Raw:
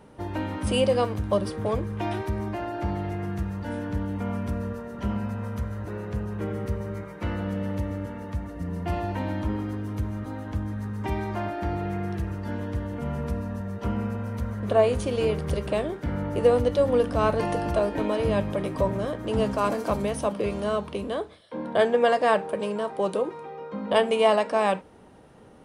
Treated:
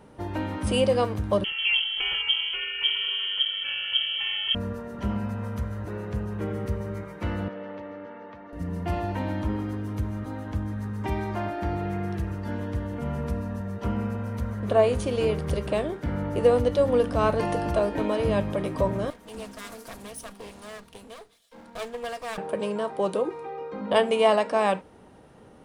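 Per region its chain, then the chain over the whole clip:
0:01.44–0:04.55: comb filter 2.2 ms, depth 62% + voice inversion scrambler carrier 3,200 Hz
0:07.48–0:08.53: high-pass filter 410 Hz + high-frequency loss of the air 290 metres
0:19.10–0:22.38: lower of the sound and its delayed copy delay 4.3 ms + first-order pre-emphasis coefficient 0.8 + highs frequency-modulated by the lows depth 0.13 ms
0:23.25–0:23.81: notch filter 3,100 Hz, Q 11 + comb filter 2.5 ms, depth 56%
whole clip: no processing

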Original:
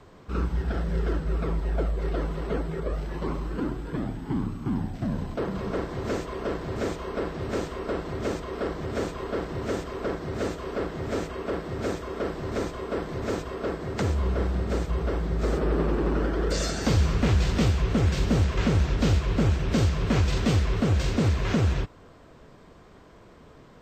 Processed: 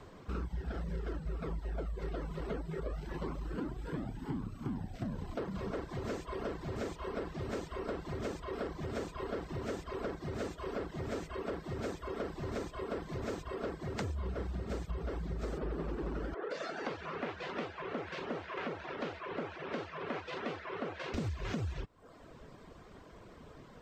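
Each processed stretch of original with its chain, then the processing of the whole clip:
0:16.34–0:21.14: band-pass filter 420–2,300 Hz + double-tracking delay 12 ms −13.5 dB
whole clip: reverb reduction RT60 0.64 s; downward compressor 4 to 1, threshold −35 dBFS; level −1 dB

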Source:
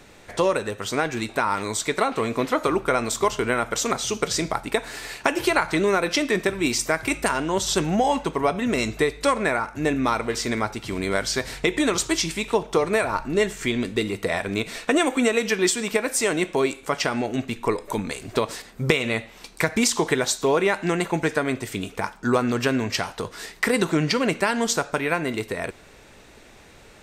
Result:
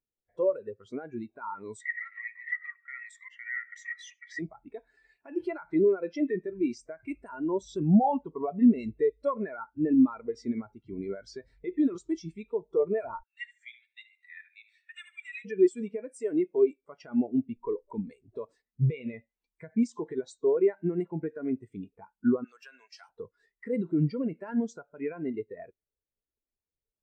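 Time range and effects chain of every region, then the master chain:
0:01.80–0:04.39: downward compressor, threshold −24 dBFS + high-pass with resonance 1,900 Hz, resonance Q 14 + single-tap delay 93 ms −14.5 dB
0:13.23–0:15.45: high-pass filter 1,500 Hz 24 dB per octave + repeating echo 74 ms, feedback 46%, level −8 dB
0:22.44–0:23.09: high-pass filter 810 Hz + high-shelf EQ 3,800 Hz +11.5 dB
whole clip: brickwall limiter −16 dBFS; every bin expanded away from the loudest bin 2.5 to 1; level +4.5 dB

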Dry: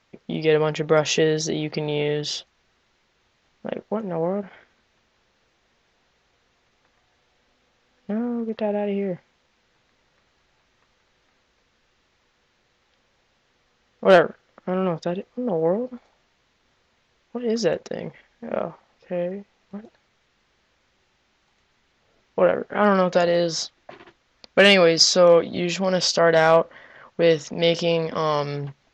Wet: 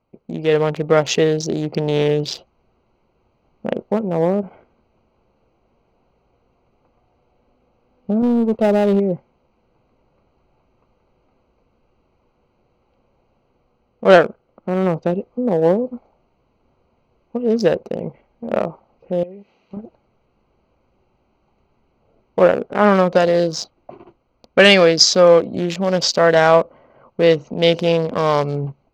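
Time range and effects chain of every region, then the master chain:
0:08.22–0:09.00: power curve on the samples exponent 0.7 + downward expander −27 dBFS
0:19.23–0:19.77: meter weighting curve D + downward compressor 2 to 1, threshold −51 dBFS + transient designer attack +8 dB, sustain +3 dB
whole clip: adaptive Wiener filter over 25 samples; automatic gain control gain up to 8 dB

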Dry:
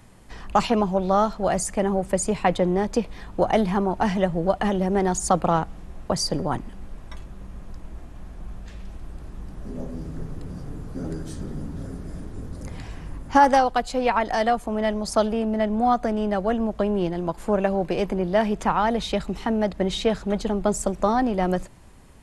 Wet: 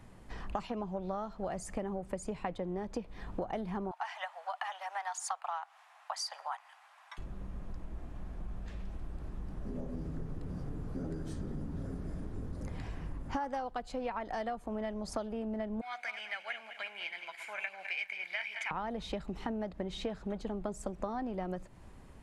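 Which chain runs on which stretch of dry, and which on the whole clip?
0:03.91–0:07.18: Butterworth high-pass 750 Hz 48 dB per octave + parametric band 2,400 Hz +3 dB 2 octaves
0:15.81–0:18.71: feedback delay that plays each chunk backwards 103 ms, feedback 53%, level −9.5 dB + high-pass with resonance 2,200 Hz, resonance Q 8.5 + comb filter 1.3 ms, depth 39%
whole clip: high-shelf EQ 3,700 Hz −8.5 dB; downward compressor 6 to 1, threshold −31 dBFS; level −3.5 dB

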